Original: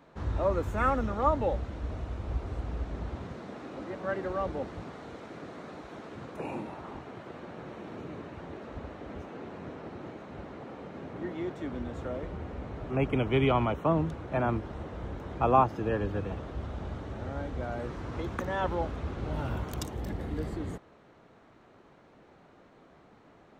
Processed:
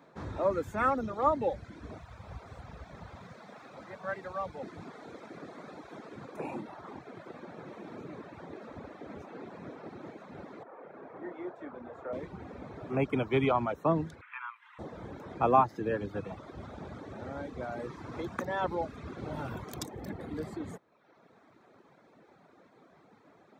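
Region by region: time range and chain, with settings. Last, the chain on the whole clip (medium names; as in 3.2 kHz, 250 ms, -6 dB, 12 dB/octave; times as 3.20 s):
1.98–4.63 s: median filter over 3 samples + peaking EQ 320 Hz -13.5 dB 1.1 oct
10.63–12.13 s: three-band isolator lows -13 dB, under 370 Hz, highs -17 dB, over 2.1 kHz + flutter echo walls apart 5.8 m, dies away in 0.24 s
14.21–14.79 s: resonant high shelf 3.6 kHz -9.5 dB, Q 3 + compression 2:1, threshold -32 dBFS + steep high-pass 960 Hz 72 dB/octave
whole clip: band-stop 2.9 kHz, Q 7.5; reverb removal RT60 0.93 s; high-pass 130 Hz 12 dB/octave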